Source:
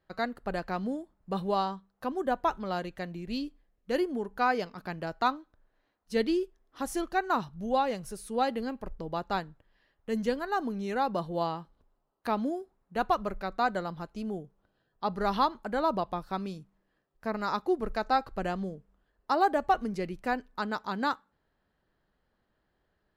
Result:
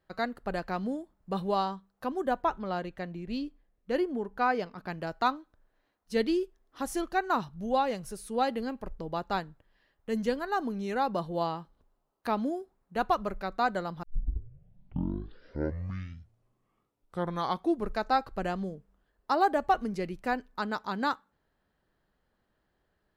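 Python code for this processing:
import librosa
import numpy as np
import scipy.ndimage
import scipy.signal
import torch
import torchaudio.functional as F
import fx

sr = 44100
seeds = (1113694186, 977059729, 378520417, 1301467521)

y = fx.high_shelf(x, sr, hz=4500.0, db=-9.5, at=(2.42, 4.88))
y = fx.edit(y, sr, fx.tape_start(start_s=14.03, length_s=3.98), tone=tone)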